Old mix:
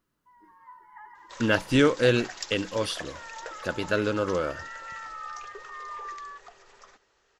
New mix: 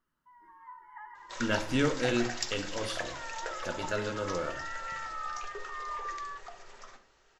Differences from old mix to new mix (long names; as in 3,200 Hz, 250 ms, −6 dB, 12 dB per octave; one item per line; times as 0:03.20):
speech −9.5 dB
reverb: on, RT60 0.45 s